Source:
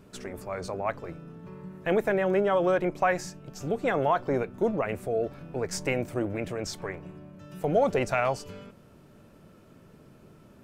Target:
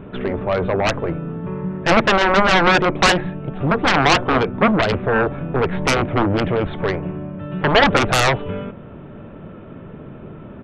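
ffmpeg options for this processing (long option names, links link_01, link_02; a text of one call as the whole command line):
ffmpeg -i in.wav -af "adynamicsmooth=sensitivity=1:basefreq=2700,aresample=8000,aresample=44100,aeval=exprs='0.224*(cos(1*acos(clip(val(0)/0.224,-1,1)))-cos(1*PI/2))+0.0398*(cos(3*acos(clip(val(0)/0.224,-1,1)))-cos(3*PI/2))+0.1*(cos(7*acos(clip(val(0)/0.224,-1,1)))-cos(7*PI/2))':channel_layout=same,volume=9dB" out.wav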